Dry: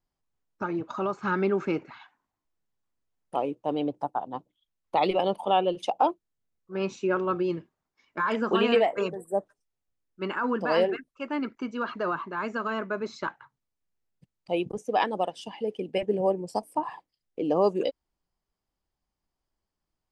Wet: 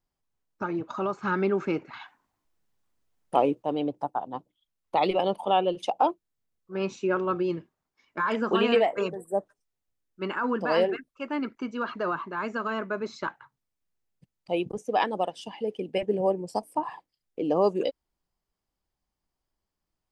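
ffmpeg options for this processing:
-filter_complex "[0:a]asettb=1/sr,asplit=3[a][b][c];[a]atrim=end=1.934[d];[b]atrim=start=1.93:end=3.63,asetpts=PTS-STARTPTS,afade=t=in:d=0.004:c=qsin,afade=t=out:st=1.696:d=0.004:c=qsin,acontrast=62[e];[c]atrim=start=3.626[f];[d][e]acrossfade=d=0.004:c1=hsin:c2=qsin[g];[g][f]acrossfade=d=0.004:c1=qsin:c2=hsin"

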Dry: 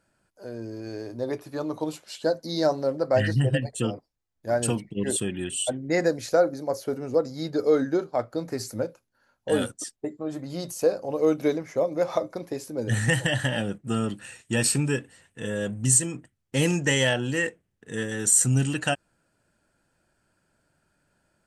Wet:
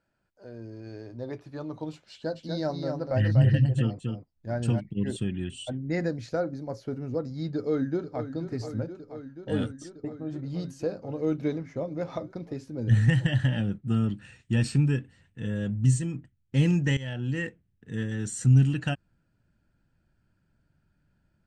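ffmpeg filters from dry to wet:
-filter_complex "[0:a]asplit=3[a][b][c];[a]afade=t=out:st=2.35:d=0.02[d];[b]aecho=1:1:243:0.562,afade=t=in:st=2.35:d=0.02,afade=t=out:st=4.79:d=0.02[e];[c]afade=t=in:st=4.79:d=0.02[f];[d][e][f]amix=inputs=3:normalize=0,asplit=2[g][h];[h]afade=t=in:st=7.55:d=0.01,afade=t=out:st=8.24:d=0.01,aecho=0:1:480|960|1440|1920|2400|2880|3360|3840|4320|4800|5280|5760:0.281838|0.225471|0.180377|0.144301|0.115441|0.0923528|0.0738822|0.0591058|0.0472846|0.0378277|0.0302622|0.0242097[i];[g][i]amix=inputs=2:normalize=0,asplit=2[j][k];[j]atrim=end=16.97,asetpts=PTS-STARTPTS,afade=t=out:st=16.966:d=0.004:c=hsin:silence=0.133352[l];[k]atrim=start=16.97,asetpts=PTS-STARTPTS,afade=t=in:d=0.45:silence=0.133352[m];[l][m]concat=n=2:v=0:a=1,lowpass=4.6k,bandreject=f=1.1k:w=21,asubboost=boost=4.5:cutoff=230,volume=-6.5dB"

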